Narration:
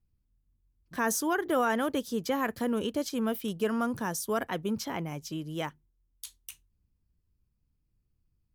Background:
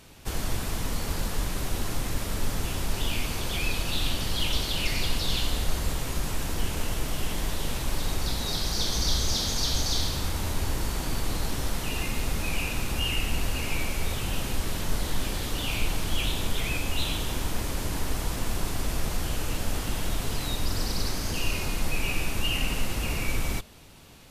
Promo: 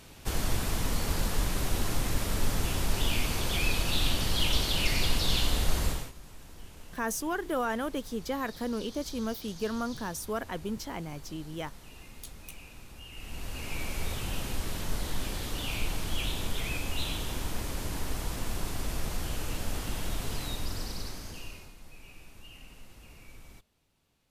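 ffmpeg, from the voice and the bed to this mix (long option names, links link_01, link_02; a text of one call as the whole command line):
ffmpeg -i stem1.wav -i stem2.wav -filter_complex "[0:a]adelay=6000,volume=-3.5dB[link_01];[1:a]volume=15dB,afade=type=out:start_time=5.85:duration=0.27:silence=0.105925,afade=type=in:start_time=13.11:duration=0.89:silence=0.177828,afade=type=out:start_time=20.36:duration=1.38:silence=0.11885[link_02];[link_01][link_02]amix=inputs=2:normalize=0" out.wav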